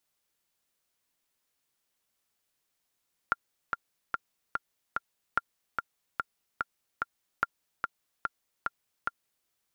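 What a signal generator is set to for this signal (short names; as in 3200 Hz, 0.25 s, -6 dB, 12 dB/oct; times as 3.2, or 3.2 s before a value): metronome 146 bpm, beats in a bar 5, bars 3, 1390 Hz, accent 4.5 dB -11.5 dBFS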